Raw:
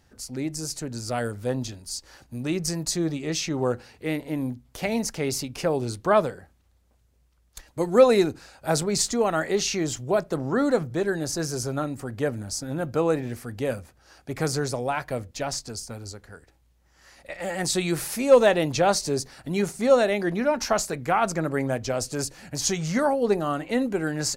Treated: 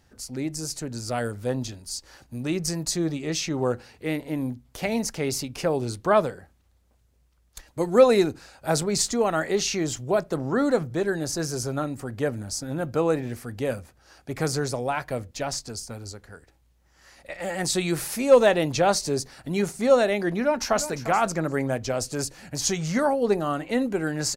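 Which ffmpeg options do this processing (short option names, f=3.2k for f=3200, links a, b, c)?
-filter_complex "[0:a]asplit=2[a][b];[b]afade=t=in:st=20.4:d=0.01,afade=t=out:st=20.92:d=0.01,aecho=0:1:350|700:0.237137|0.0355706[c];[a][c]amix=inputs=2:normalize=0"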